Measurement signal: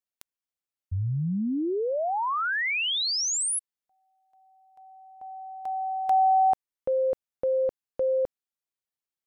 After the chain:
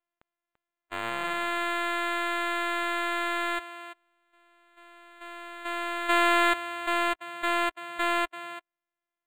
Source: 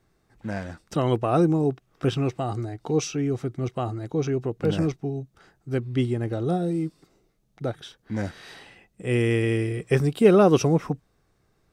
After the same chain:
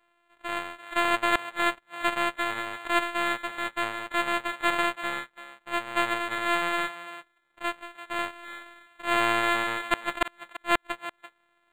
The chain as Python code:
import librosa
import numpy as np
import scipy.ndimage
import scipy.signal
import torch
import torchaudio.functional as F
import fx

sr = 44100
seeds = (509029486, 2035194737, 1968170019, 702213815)

y = np.r_[np.sort(x[:len(x) // 128 * 128].reshape(-1, 128), axis=1).ravel(), x[len(x) // 128 * 128:]]
y = scipy.signal.sosfilt(scipy.signal.butter(2, 1100.0, 'highpass', fs=sr, output='sos'), y)
y = fx.hpss(y, sr, part='percussive', gain_db=-11)
y = fx.gate_flip(y, sr, shuts_db=-8.0, range_db=-42)
y = y + 10.0 ** (-7.0 / 20.0) * np.pad(y, (int(339 * sr / 1000.0), 0))[:len(y)]
y = np.interp(np.arange(len(y)), np.arange(len(y))[::8], y[::8])
y = y * 10.0 ** (3.5 / 20.0)